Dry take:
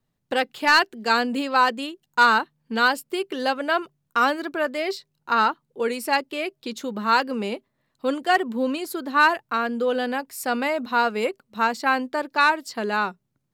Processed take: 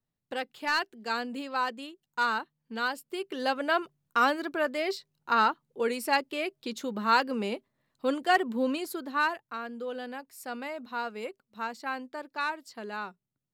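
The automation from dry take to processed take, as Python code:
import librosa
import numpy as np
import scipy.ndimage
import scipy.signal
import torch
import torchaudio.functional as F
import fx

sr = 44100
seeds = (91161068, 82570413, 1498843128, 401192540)

y = fx.gain(x, sr, db=fx.line((2.93, -11.0), (3.58, -4.0), (8.8, -4.0), (9.47, -13.0)))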